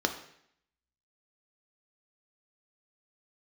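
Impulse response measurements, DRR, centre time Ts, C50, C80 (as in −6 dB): 5.0 dB, 13 ms, 10.0 dB, 13.0 dB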